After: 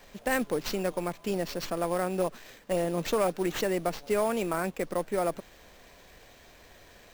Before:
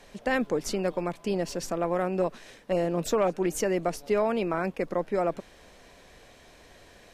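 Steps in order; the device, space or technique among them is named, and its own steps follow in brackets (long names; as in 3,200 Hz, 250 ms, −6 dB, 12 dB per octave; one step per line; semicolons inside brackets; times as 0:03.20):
parametric band 290 Hz −2.5 dB 2.9 octaves
early companding sampler (sample-rate reduction 10,000 Hz, jitter 0%; log-companded quantiser 6 bits)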